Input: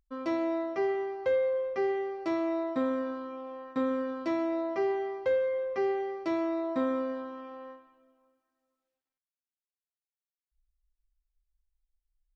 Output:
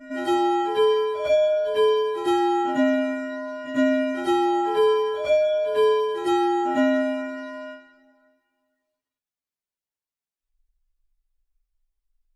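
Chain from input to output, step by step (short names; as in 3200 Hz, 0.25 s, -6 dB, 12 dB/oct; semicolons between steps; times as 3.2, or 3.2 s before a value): inharmonic rescaling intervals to 122%; pre-echo 0.102 s -12.5 dB; gain +9 dB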